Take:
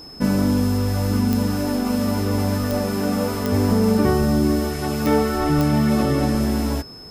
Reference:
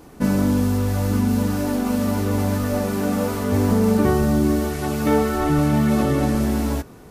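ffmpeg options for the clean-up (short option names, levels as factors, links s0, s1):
-af "adeclick=t=4,bandreject=f=5200:w=30"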